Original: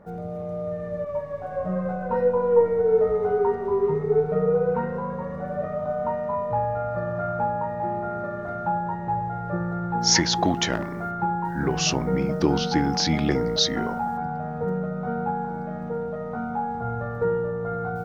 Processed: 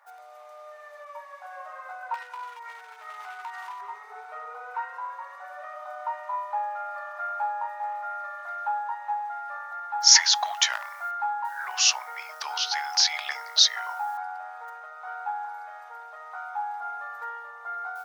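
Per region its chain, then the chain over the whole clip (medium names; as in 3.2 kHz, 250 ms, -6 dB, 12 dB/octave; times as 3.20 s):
2.14–3.81 s: tilt shelf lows -9.5 dB, about 750 Hz + compression 20:1, threshold -27 dBFS + overload inside the chain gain 26.5 dB
whole clip: steep high-pass 800 Hz 36 dB/octave; tilt EQ +2 dB/octave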